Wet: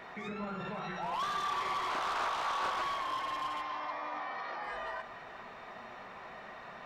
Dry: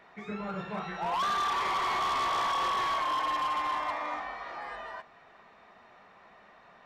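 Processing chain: 3.61–4.64 s: elliptic band-pass 130–5600 Hz; peak limiter -40.5 dBFS, peak gain reduction 15.5 dB; reverberation RT60 1.5 s, pre-delay 8 ms, DRR 9 dB; 1.89–2.83 s: loudspeaker Doppler distortion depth 0.54 ms; trim +8 dB

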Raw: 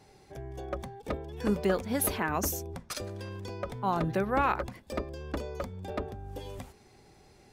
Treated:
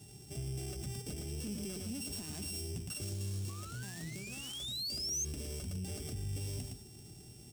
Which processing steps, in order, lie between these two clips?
sorted samples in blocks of 16 samples; high-pass 41 Hz 24 dB/octave; peaking EQ 520 Hz -13 dB 0.3 oct; 3.01–5.12 s: companded quantiser 4-bit; compression 6:1, threshold -36 dBFS, peak gain reduction 13.5 dB; delay 113 ms -7.5 dB; 3.49–5.25 s: painted sound rise 1.1–6.5 kHz -36 dBFS; peak limiter -34.5 dBFS, peak gain reduction 11.5 dB; saturation -38.5 dBFS, distortion -17 dB; graphic EQ 125/1000/2000/8000 Hz +7/-12/-10/+10 dB; trim +3 dB

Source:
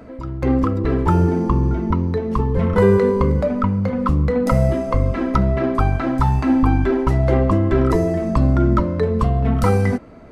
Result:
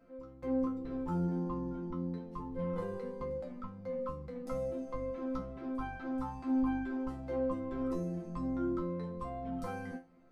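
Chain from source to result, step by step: dynamic bell 1.7 kHz, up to -3 dB, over -37 dBFS, Q 0.97; chord resonator F3 fifth, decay 0.27 s; trim -7.5 dB

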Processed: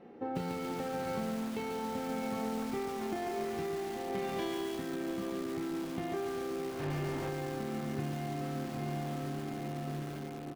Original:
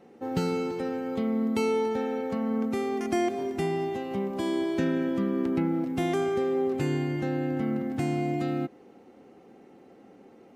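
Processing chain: distance through air 200 m; doubling 33 ms -4.5 dB; echo that smears into a reverb 719 ms, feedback 51%, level -6.5 dB; 6.70–7.29 s: hard clipper -27 dBFS, distortion -18 dB; compression 16:1, threshold -33 dBFS, peak gain reduction 14 dB; 4.15–4.76 s: peaking EQ 4 kHz +11 dB 2.6 oct; bit-crushed delay 141 ms, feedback 80%, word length 7-bit, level -6 dB

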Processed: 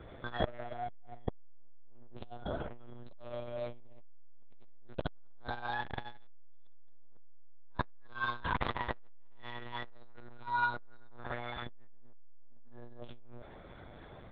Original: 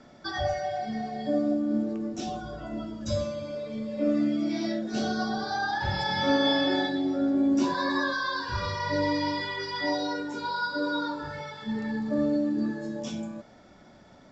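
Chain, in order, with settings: monotone LPC vocoder at 8 kHz 120 Hz; transformer saturation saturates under 600 Hz; trim +2.5 dB

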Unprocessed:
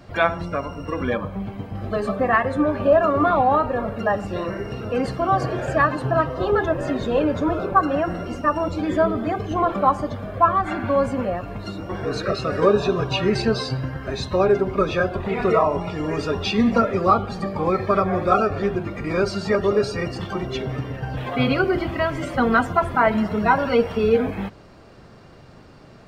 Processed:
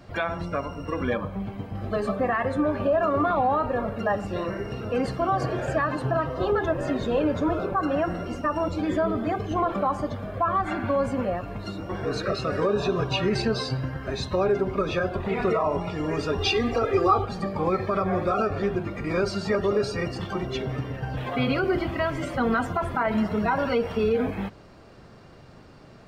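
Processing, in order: peak limiter -12.5 dBFS, peak gain reduction 8.5 dB; 16.38–17.25 s: comb 2.5 ms, depth 97%; trim -2.5 dB

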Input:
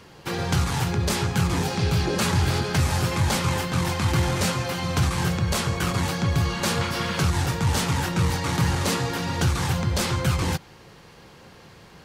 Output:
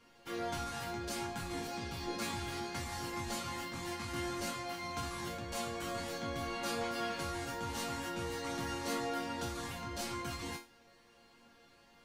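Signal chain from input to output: chord resonator A#3 minor, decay 0.31 s; trim +3 dB

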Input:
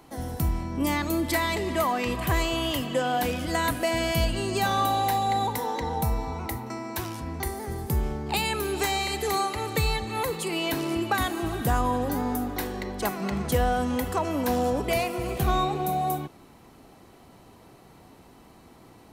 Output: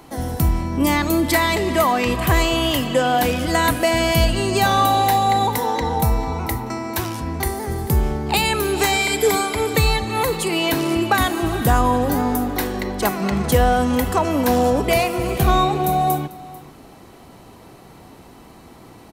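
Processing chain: 8.93–9.74 s: rippled EQ curve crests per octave 1.7, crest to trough 12 dB; delay 443 ms -19.5 dB; trim +8 dB

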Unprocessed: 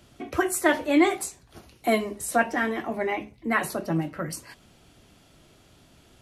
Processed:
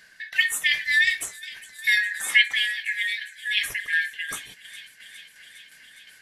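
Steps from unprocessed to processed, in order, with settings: four frequency bands reordered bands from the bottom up 4123; on a send: feedback echo behind a high-pass 409 ms, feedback 82%, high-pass 2.9 kHz, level -16 dB; on the sum: tremolo saw down 2.8 Hz, depth 50%; 1.97–2.48 s: peaking EQ 1.4 kHz +6.5 dB 2.3 oct; trim +3 dB

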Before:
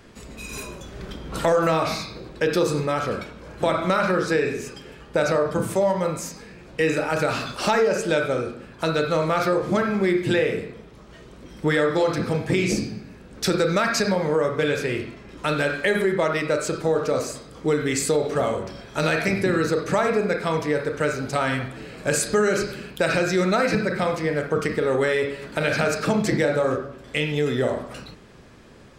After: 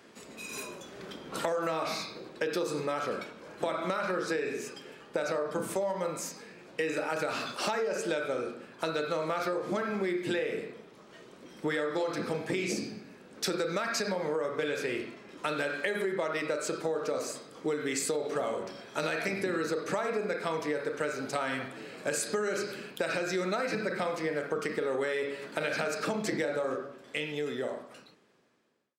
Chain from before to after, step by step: fade out at the end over 2.56 s; high-pass 240 Hz 12 dB/octave; compression, threshold -23 dBFS, peak gain reduction 7.5 dB; trim -4.5 dB

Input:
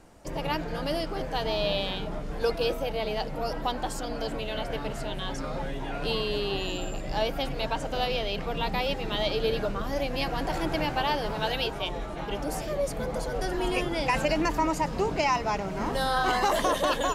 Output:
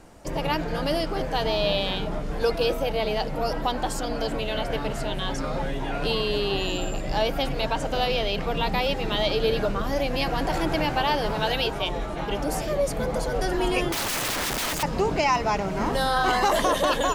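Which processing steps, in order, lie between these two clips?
in parallel at -3 dB: peak limiter -20.5 dBFS, peak gain reduction 7.5 dB; 13.92–14.83 s: on the sum: integer overflow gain 22.5 dB

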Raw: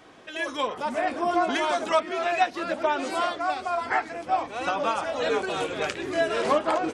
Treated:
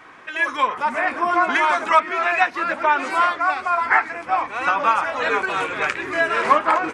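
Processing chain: high-order bell 1.5 kHz +11 dB

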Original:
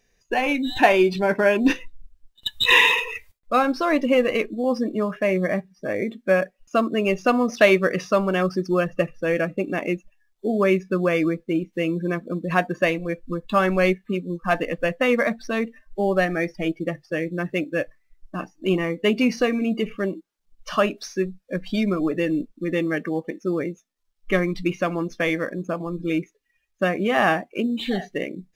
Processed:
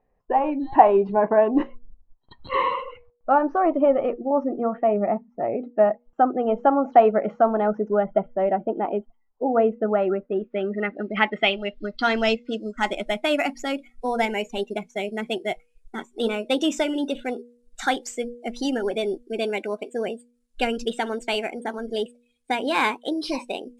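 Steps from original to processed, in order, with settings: gliding tape speed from 105% -> 135%; de-hum 240.5 Hz, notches 2; low-pass sweep 910 Hz -> 10 kHz, 9.81–13.14 s; trim -2.5 dB

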